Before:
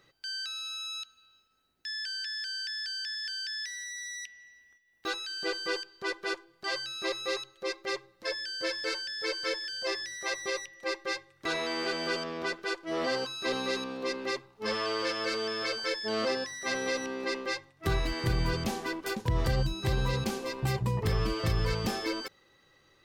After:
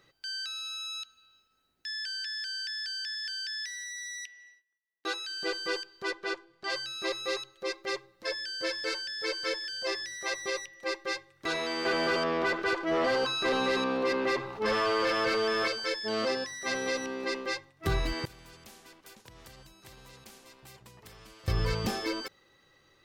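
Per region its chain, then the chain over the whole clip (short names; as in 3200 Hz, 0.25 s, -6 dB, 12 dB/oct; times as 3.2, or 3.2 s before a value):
4.18–5.37 brick-wall FIR band-pass 280–14000 Hz + gate -58 dBFS, range -21 dB
6.11–6.7 air absorption 54 m + notches 50/100/150/200/250 Hz
11.85–15.68 low shelf 200 Hz +6.5 dB + overdrive pedal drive 15 dB, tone 1600 Hz, clips at -18 dBFS + fast leveller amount 50%
18.25–21.48 flipped gate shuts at -32 dBFS, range -25 dB + spectral compressor 2:1
whole clip: dry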